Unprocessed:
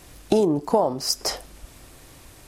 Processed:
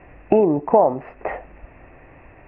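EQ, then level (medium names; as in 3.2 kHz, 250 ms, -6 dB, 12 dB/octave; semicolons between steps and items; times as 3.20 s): rippled Chebyshev low-pass 2.7 kHz, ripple 6 dB; +7.0 dB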